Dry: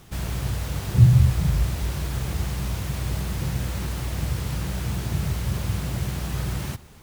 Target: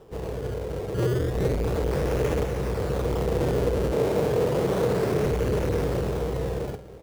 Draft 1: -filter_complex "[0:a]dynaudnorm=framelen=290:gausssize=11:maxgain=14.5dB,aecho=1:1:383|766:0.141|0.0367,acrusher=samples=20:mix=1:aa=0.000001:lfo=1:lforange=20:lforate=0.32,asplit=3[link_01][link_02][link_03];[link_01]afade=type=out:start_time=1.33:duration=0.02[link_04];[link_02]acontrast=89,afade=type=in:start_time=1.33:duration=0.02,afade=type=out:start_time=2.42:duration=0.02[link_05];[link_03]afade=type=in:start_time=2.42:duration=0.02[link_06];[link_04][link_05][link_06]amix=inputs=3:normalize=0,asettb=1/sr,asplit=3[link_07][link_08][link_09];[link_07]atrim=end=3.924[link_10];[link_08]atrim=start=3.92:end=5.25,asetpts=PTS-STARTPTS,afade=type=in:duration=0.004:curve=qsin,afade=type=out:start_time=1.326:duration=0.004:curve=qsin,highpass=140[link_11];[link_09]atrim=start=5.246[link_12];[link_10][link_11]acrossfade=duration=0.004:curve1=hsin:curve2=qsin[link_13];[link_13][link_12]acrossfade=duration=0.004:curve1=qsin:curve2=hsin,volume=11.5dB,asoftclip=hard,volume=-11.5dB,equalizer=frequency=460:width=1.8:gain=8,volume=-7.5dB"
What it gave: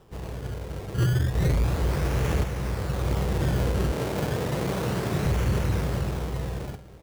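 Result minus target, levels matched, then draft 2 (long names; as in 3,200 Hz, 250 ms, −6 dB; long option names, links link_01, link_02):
500 Hz band −6.5 dB; gain into a clipping stage and back: distortion −8 dB
-filter_complex "[0:a]dynaudnorm=framelen=290:gausssize=11:maxgain=14.5dB,aecho=1:1:383|766:0.141|0.0367,acrusher=samples=20:mix=1:aa=0.000001:lfo=1:lforange=20:lforate=0.32,asplit=3[link_01][link_02][link_03];[link_01]afade=type=out:start_time=1.33:duration=0.02[link_04];[link_02]acontrast=89,afade=type=in:start_time=1.33:duration=0.02,afade=type=out:start_time=2.42:duration=0.02[link_05];[link_03]afade=type=in:start_time=2.42:duration=0.02[link_06];[link_04][link_05][link_06]amix=inputs=3:normalize=0,asettb=1/sr,asplit=3[link_07][link_08][link_09];[link_07]atrim=end=3.924[link_10];[link_08]atrim=start=3.92:end=5.25,asetpts=PTS-STARTPTS,afade=type=in:duration=0.004:curve=qsin,afade=type=out:start_time=1.326:duration=0.004:curve=qsin,highpass=140[link_11];[link_09]atrim=start=5.246[link_12];[link_10][link_11]acrossfade=duration=0.004:curve1=hsin:curve2=qsin[link_13];[link_13][link_12]acrossfade=duration=0.004:curve1=qsin:curve2=hsin,volume=18dB,asoftclip=hard,volume=-18dB,equalizer=frequency=460:width=1.8:gain=19.5,volume=-7.5dB"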